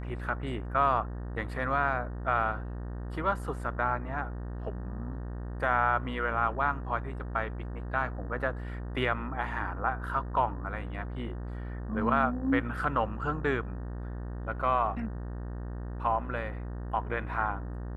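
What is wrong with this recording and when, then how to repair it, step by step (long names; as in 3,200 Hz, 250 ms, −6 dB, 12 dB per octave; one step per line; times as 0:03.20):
mains buzz 60 Hz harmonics 31 −37 dBFS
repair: hum removal 60 Hz, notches 31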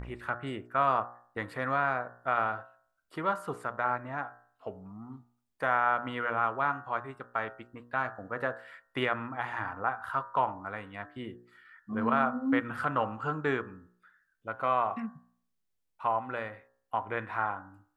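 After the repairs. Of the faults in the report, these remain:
none of them is left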